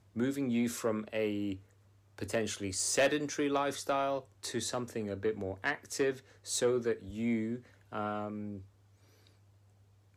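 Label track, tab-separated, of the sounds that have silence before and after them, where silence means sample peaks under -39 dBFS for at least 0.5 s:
2.180000	8.580000	sound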